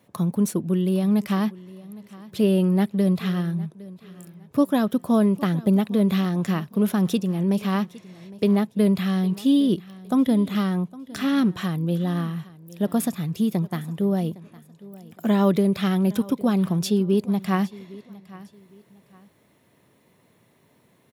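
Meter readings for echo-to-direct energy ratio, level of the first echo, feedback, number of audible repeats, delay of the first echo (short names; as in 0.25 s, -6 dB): -19.5 dB, -20.0 dB, 30%, 2, 0.81 s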